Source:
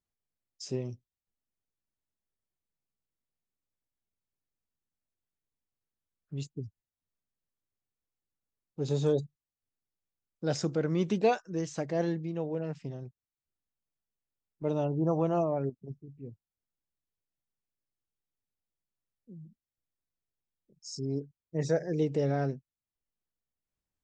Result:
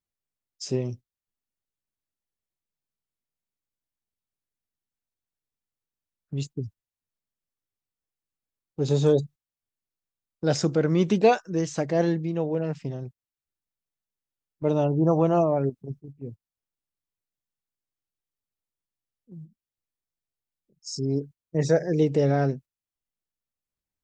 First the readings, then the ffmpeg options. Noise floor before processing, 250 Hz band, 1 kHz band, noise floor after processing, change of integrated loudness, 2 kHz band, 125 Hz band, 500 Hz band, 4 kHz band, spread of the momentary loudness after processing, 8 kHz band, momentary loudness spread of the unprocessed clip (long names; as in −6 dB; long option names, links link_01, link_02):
below −85 dBFS, +7.0 dB, +7.0 dB, below −85 dBFS, +7.0 dB, +7.0 dB, +7.0 dB, +7.0 dB, +7.0 dB, 18 LU, +7.0 dB, 19 LU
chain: -af "agate=range=-9dB:threshold=-47dB:ratio=16:detection=peak,volume=7dB"